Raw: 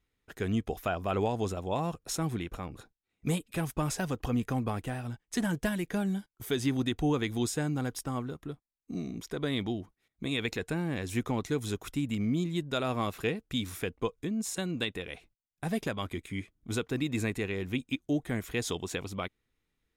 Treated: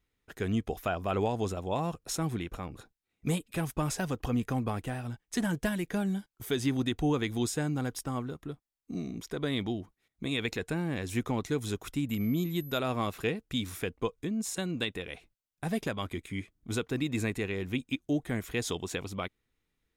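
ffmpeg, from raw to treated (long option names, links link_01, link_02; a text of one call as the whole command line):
ffmpeg -i in.wav -filter_complex "[0:a]asettb=1/sr,asplit=3[link_01][link_02][link_03];[link_01]atrim=end=12.094[link_04];[link_02]atrim=start=12.09:end=12.79,asetpts=PTS-STARTPTS,afade=type=in:duration=0.004:curve=qsin,afade=type=out:start_time=0.696:duration=0.004:curve=qsin,aeval=exprs='val(0)+0.00398*sin(2*PI*12000*n/s)':channel_layout=same[link_05];[link_03]atrim=start=12.786[link_06];[link_04][link_05]acrossfade=duration=0.004:curve1=hsin:curve2=qsin[link_07];[link_07][link_06]acrossfade=duration=0.004:curve1=qsin:curve2=hsin" out.wav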